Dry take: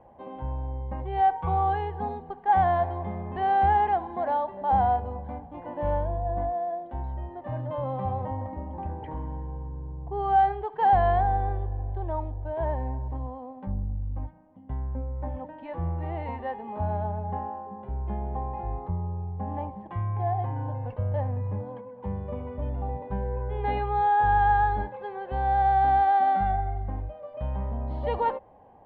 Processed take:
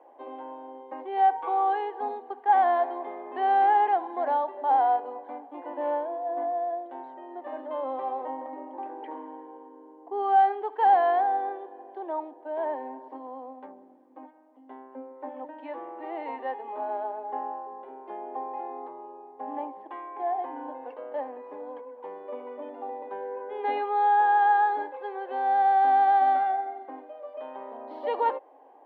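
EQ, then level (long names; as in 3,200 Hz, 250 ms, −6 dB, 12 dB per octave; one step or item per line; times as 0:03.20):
Chebyshev high-pass filter 270 Hz, order 6
+1.0 dB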